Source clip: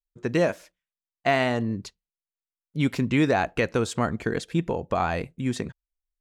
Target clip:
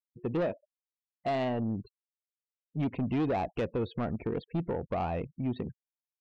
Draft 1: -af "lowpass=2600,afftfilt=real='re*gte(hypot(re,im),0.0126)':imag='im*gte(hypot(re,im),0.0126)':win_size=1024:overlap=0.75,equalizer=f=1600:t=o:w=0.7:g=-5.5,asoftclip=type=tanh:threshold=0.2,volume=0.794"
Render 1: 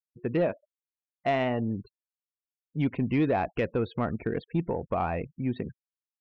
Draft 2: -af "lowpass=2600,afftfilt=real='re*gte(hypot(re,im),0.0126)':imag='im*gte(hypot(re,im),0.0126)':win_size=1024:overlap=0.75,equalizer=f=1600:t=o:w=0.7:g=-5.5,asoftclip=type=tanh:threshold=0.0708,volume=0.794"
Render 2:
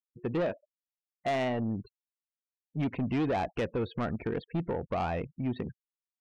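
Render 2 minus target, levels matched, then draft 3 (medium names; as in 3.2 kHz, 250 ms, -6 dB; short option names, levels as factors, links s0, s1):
2 kHz band +3.5 dB
-af "lowpass=2600,afftfilt=real='re*gte(hypot(re,im),0.0126)':imag='im*gte(hypot(re,im),0.0126)':win_size=1024:overlap=0.75,equalizer=f=1600:t=o:w=0.7:g=-15.5,asoftclip=type=tanh:threshold=0.0708,volume=0.794"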